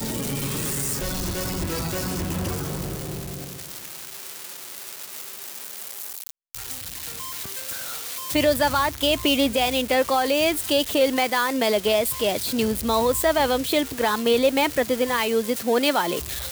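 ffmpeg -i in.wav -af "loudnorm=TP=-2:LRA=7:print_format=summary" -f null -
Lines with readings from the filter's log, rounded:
Input Integrated:    -22.9 LUFS
Input True Peak:      -9.7 dBTP
Input LRA:            10.6 LU
Input Threshold:     -33.5 LUFS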